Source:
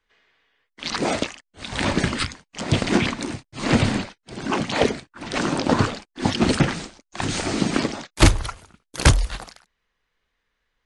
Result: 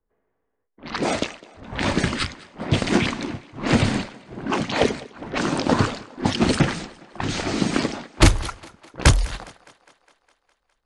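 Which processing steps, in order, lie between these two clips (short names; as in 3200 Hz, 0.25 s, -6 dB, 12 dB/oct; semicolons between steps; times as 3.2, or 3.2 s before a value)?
low-pass opened by the level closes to 670 Hz, open at -18.5 dBFS; thinning echo 0.205 s, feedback 66%, high-pass 250 Hz, level -19.5 dB; mismatched tape noise reduction decoder only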